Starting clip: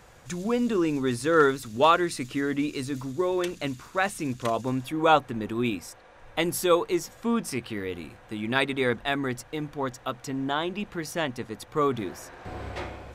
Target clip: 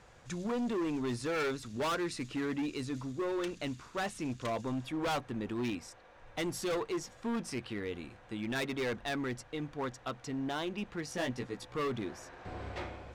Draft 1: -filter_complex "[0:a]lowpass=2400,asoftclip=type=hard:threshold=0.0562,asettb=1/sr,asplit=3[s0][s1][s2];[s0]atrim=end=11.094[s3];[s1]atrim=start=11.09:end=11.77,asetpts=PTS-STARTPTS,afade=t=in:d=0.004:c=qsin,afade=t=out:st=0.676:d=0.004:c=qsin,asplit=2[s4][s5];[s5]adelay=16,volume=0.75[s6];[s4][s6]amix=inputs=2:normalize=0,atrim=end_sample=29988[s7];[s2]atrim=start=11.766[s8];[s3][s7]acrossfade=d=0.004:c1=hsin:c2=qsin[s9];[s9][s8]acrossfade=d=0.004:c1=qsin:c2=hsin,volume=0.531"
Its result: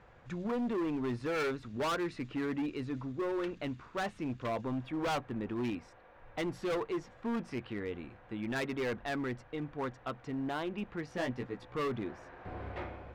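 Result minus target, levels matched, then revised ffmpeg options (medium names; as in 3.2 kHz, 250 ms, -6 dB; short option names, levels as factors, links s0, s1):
8 kHz band -8.5 dB
-filter_complex "[0:a]lowpass=7500,asoftclip=type=hard:threshold=0.0562,asettb=1/sr,asplit=3[s0][s1][s2];[s0]atrim=end=11.094[s3];[s1]atrim=start=11.09:end=11.77,asetpts=PTS-STARTPTS,afade=t=in:d=0.004:c=qsin,afade=t=out:st=0.676:d=0.004:c=qsin,asplit=2[s4][s5];[s5]adelay=16,volume=0.75[s6];[s4][s6]amix=inputs=2:normalize=0,atrim=end_sample=29988[s7];[s2]atrim=start=11.766[s8];[s3][s7]acrossfade=d=0.004:c1=hsin:c2=qsin[s9];[s9][s8]acrossfade=d=0.004:c1=qsin:c2=hsin,volume=0.531"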